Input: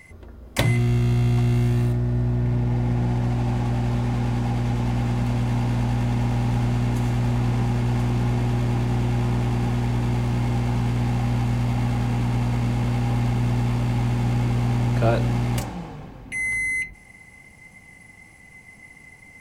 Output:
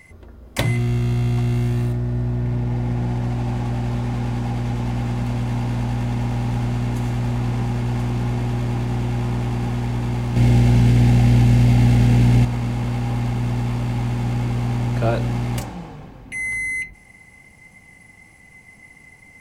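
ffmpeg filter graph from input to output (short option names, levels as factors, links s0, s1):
-filter_complex "[0:a]asettb=1/sr,asplit=3[s0][s1][s2];[s0]atrim=end=10.364[s3];[s1]atrim=start=10.36:end=12.45,asetpts=PTS-STARTPTS,afade=t=in:d=0.004:c=qsin,afade=t=out:st=2.086:d=0.004:c=qsin,equalizer=f=1100:t=o:w=0.78:g=-9.5,acontrast=88,asplit=2[s4][s5];[s5]adelay=34,volume=0.299[s6];[s4][s6]amix=inputs=2:normalize=0,atrim=end_sample=92169[s7];[s2]atrim=start=12.446[s8];[s3][s7]acrossfade=d=0.004:c1=hsin:c2=qsin[s9];[s9][s8]acrossfade=d=0.004:c1=qsin:c2=hsin"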